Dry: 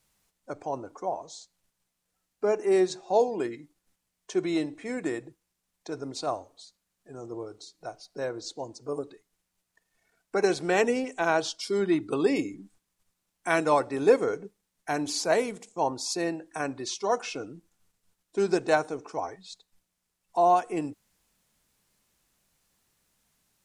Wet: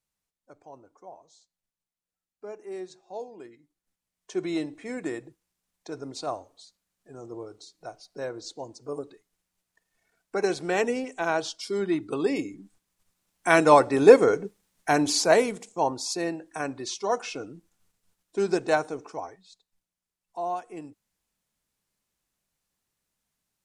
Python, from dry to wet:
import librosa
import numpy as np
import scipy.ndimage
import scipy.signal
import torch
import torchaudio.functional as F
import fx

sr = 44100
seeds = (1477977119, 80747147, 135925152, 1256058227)

y = fx.gain(x, sr, db=fx.line((3.58, -14.5), (4.44, -1.5), (12.53, -1.5), (13.72, 7.0), (14.97, 7.0), (16.17, 0.0), (19.04, 0.0), (19.51, -9.5)))